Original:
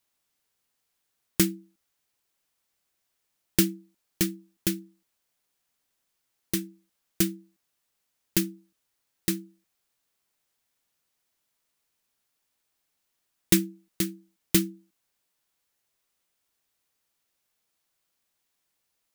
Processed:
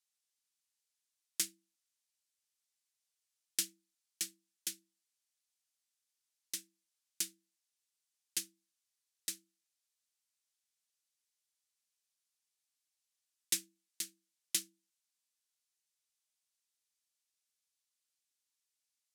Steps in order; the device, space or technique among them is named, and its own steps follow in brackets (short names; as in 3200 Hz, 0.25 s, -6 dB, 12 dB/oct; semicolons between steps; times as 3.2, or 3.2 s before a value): piezo pickup straight into a mixer (LPF 7800 Hz 12 dB/oct; differentiator); gain -2.5 dB